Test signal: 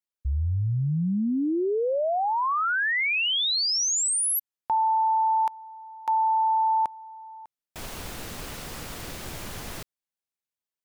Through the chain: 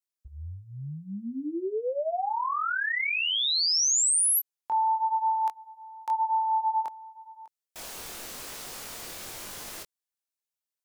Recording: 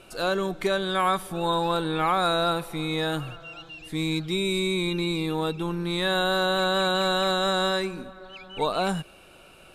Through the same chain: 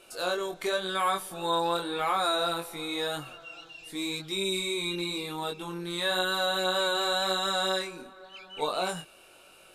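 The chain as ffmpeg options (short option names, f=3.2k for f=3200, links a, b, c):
-af "bass=f=250:g=-11,treble=f=4k:g=6,flanger=delay=20:depth=3.9:speed=0.93,volume=-1dB"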